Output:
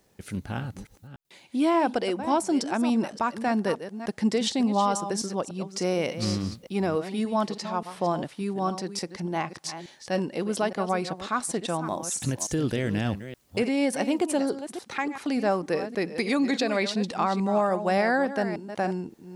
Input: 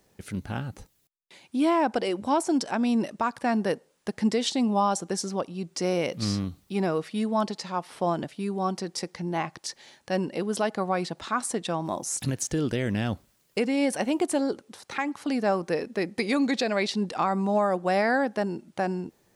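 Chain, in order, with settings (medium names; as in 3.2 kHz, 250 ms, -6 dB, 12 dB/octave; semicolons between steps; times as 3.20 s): chunks repeated in reverse 290 ms, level -11 dB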